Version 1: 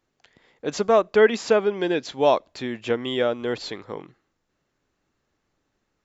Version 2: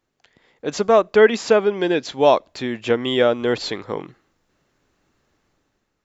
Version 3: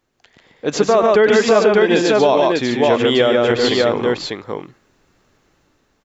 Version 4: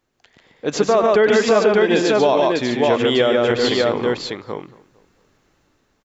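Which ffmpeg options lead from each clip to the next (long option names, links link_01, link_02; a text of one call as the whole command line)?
ffmpeg -i in.wav -af "dynaudnorm=framelen=140:gausssize=9:maxgain=8dB" out.wav
ffmpeg -i in.wav -filter_complex "[0:a]asplit=2[link_01][link_02];[link_02]aecho=0:1:98|143|596:0.316|0.668|0.631[link_03];[link_01][link_03]amix=inputs=2:normalize=0,alimiter=limit=-9dB:level=0:latency=1:release=69,volume=5dB" out.wav
ffmpeg -i in.wav -filter_complex "[0:a]asplit=2[link_01][link_02];[link_02]adelay=226,lowpass=frequency=2100:poles=1,volume=-20dB,asplit=2[link_03][link_04];[link_04]adelay=226,lowpass=frequency=2100:poles=1,volume=0.42,asplit=2[link_05][link_06];[link_06]adelay=226,lowpass=frequency=2100:poles=1,volume=0.42[link_07];[link_01][link_03][link_05][link_07]amix=inputs=4:normalize=0,volume=-2dB" out.wav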